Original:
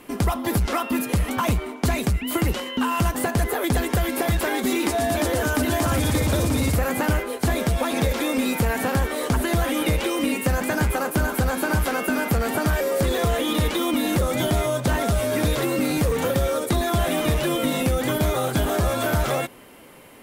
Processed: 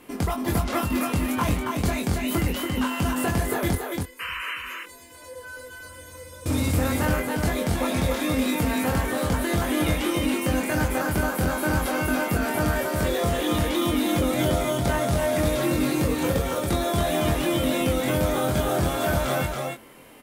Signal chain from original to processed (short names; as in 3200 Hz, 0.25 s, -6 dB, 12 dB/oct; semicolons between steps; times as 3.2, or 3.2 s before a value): 3.75–6.46 resonator 500 Hz, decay 0.24 s, harmonics all, mix 100%; 4.19–4.56 painted sound noise 950–3100 Hz -29 dBFS; doubler 23 ms -4 dB; echo 0.278 s -3.5 dB; gain -4.5 dB